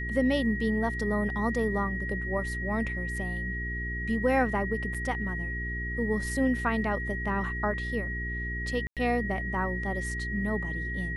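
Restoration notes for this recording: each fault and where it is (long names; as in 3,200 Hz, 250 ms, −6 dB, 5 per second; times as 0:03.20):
mains hum 60 Hz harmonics 7 −35 dBFS
whistle 1,900 Hz −34 dBFS
0:04.94–0:04.95: drop-out 5.6 ms
0:08.87–0:08.97: drop-out 97 ms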